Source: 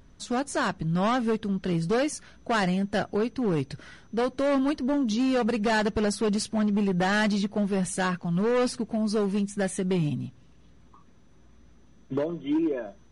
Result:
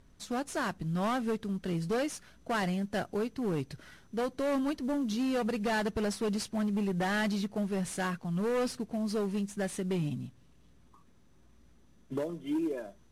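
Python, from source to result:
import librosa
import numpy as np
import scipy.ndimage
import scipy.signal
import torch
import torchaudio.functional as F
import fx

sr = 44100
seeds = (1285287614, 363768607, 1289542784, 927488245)

y = fx.cvsd(x, sr, bps=64000)
y = y * librosa.db_to_amplitude(-6.0)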